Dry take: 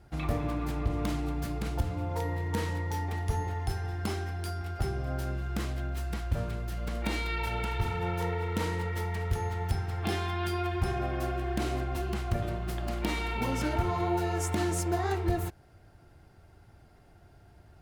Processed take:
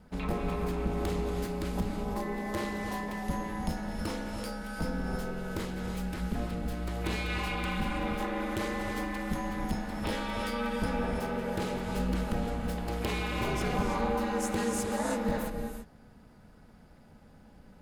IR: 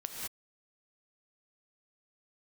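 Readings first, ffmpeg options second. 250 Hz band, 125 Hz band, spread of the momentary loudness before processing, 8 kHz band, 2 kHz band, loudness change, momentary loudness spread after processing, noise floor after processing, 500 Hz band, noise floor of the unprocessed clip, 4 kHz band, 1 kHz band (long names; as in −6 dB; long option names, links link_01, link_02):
+2.5 dB, −5.5 dB, 5 LU, 0.0 dB, +1.0 dB, −1.0 dB, 5 LU, −56 dBFS, +0.5 dB, −57 dBFS, +0.5 dB, −0.5 dB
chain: -filter_complex "[0:a]bandreject=frequency=5800:width=28,aeval=exprs='val(0)*sin(2*PI*120*n/s)':channel_layout=same,asoftclip=type=tanh:threshold=-22.5dB,asplit=2[link_01][link_02];[1:a]atrim=start_sample=2205,asetrate=27783,aresample=44100[link_03];[link_02][link_03]afir=irnorm=-1:irlink=0,volume=-1dB[link_04];[link_01][link_04]amix=inputs=2:normalize=0,volume=-3dB"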